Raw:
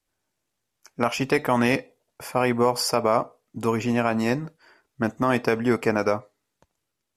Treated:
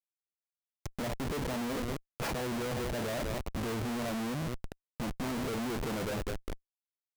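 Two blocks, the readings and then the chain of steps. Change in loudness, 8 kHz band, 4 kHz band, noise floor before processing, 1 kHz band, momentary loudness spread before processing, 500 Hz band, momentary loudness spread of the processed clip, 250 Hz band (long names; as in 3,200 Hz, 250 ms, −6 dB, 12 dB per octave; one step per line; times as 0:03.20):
−12.0 dB, −8.0 dB, −8.5 dB, −80 dBFS, −14.0 dB, 8 LU, −13.0 dB, 9 LU, −10.5 dB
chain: treble cut that deepens with the level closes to 650 Hz, closed at −22 dBFS
feedback echo with a high-pass in the loop 201 ms, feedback 50%, high-pass 300 Hz, level −15 dB
comparator with hysteresis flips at −38.5 dBFS
level −7 dB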